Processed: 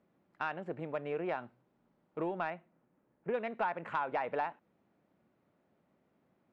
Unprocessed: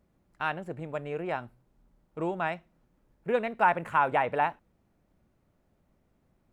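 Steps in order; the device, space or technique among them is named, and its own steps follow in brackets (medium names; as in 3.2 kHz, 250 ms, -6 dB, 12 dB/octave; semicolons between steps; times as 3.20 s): AM radio (band-pass 190–3300 Hz; compression 4:1, threshold -31 dBFS, peak gain reduction 11.5 dB; saturation -21 dBFS, distortion -23 dB); 2.50–3.34 s: distance through air 340 m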